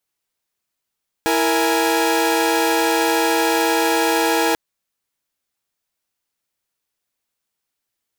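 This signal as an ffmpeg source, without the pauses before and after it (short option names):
-f lavfi -i "aevalsrc='0.133*((2*mod(329.63*t,1)-1)+(2*mod(466.16*t,1)-1)+(2*mod(830.61*t,1)-1))':d=3.29:s=44100"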